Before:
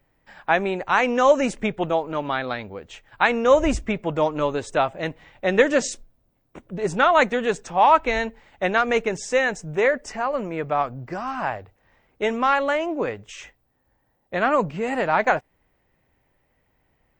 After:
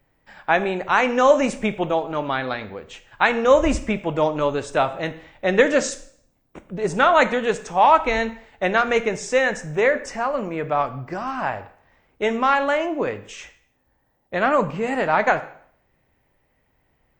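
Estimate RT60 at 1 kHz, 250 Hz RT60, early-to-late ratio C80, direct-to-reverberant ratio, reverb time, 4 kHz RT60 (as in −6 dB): 0.60 s, 0.60 s, 17.5 dB, 11.0 dB, 0.60 s, 0.55 s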